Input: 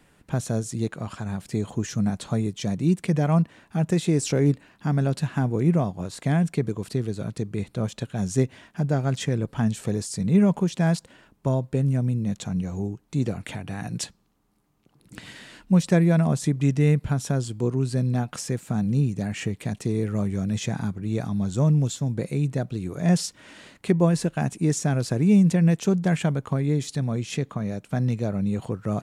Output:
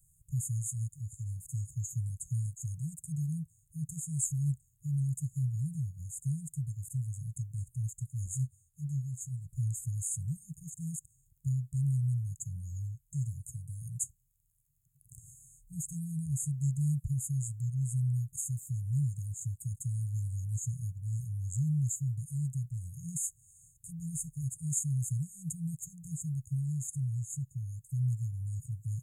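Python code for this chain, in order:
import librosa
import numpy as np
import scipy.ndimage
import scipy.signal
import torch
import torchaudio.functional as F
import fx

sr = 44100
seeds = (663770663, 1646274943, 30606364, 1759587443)

y = fx.high_shelf(x, sr, hz=8000.0, db=9.0)
y = fx.dmg_crackle(y, sr, seeds[0], per_s=23.0, level_db=-49.0)
y = fx.brickwall_bandstop(y, sr, low_hz=150.0, high_hz=6400.0)
y = fx.ensemble(y, sr, at=(8.26, 9.53))
y = y * 10.0 ** (-4.0 / 20.0)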